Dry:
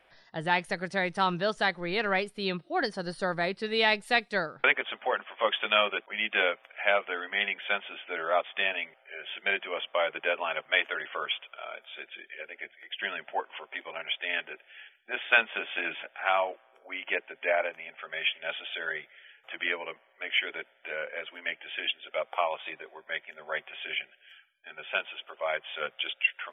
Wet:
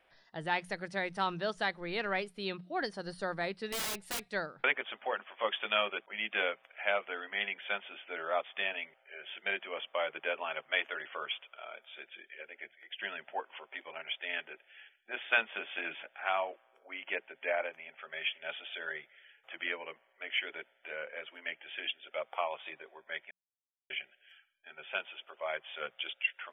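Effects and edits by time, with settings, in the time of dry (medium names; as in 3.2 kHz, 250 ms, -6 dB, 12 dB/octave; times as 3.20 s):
3.72–4.21 s: integer overflow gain 24.5 dB
23.31–23.90 s: mute
whole clip: hum notches 60/120/180 Hz; trim -6 dB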